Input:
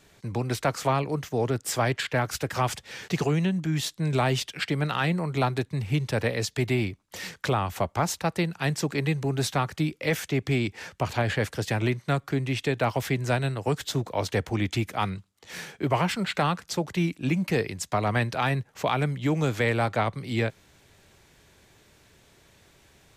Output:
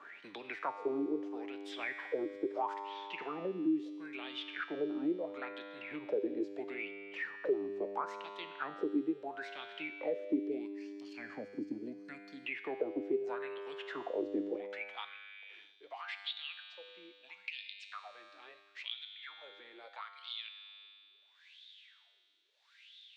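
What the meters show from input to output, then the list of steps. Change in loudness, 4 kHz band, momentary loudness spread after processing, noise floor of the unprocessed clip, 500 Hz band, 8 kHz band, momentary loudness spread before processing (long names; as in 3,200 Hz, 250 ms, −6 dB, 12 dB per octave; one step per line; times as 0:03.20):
−12.5 dB, −11.5 dB, 17 LU, −61 dBFS, −10.0 dB, below −30 dB, 5 LU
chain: low-shelf EQ 230 Hz +8.5 dB
gain on a spectral selection 0:10.66–0:12.44, 290–4,100 Hz −16 dB
high-shelf EQ 5,900 Hz −11.5 dB
in parallel at −2 dB: brickwall limiter −17 dBFS, peak gain reduction 7.5 dB
on the sum: LFO wah 0.75 Hz 300–3,600 Hz, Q 9.6
tuned comb filter 100 Hz, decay 1.6 s, harmonics all, mix 80%
high-pass filter sweep 310 Hz → 3,900 Hz, 0:14.46–0:15.73
multiband upward and downward compressor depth 70%
level +7 dB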